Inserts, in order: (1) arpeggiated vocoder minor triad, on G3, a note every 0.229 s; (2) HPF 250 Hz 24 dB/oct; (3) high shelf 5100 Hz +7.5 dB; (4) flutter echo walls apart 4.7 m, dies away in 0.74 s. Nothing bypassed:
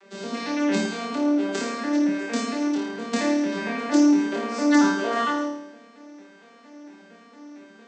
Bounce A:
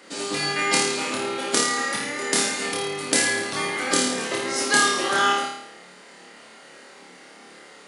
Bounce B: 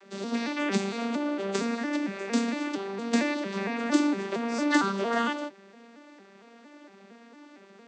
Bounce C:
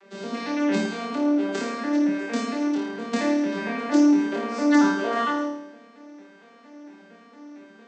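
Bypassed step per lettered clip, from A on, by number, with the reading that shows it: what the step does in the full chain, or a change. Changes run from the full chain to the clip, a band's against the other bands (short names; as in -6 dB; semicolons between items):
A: 1, 250 Hz band -17.5 dB; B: 4, echo-to-direct 2.0 dB to none; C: 3, 8 kHz band -4.5 dB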